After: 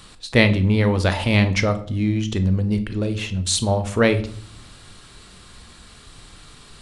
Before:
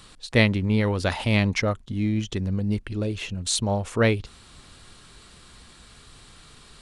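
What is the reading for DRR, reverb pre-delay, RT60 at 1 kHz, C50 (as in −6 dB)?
9.5 dB, 21 ms, 0.50 s, 13.5 dB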